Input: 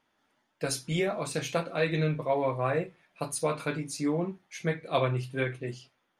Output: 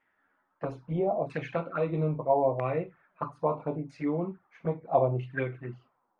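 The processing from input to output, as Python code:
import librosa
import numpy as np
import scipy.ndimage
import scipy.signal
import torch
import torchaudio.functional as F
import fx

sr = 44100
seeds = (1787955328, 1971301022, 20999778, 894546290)

y = fx.env_flanger(x, sr, rest_ms=11.2, full_db=-27.5)
y = fx.filter_lfo_lowpass(y, sr, shape='saw_down', hz=0.77, low_hz=680.0, high_hz=2000.0, q=3.6)
y = y * 10.0 ** (-1.0 / 20.0)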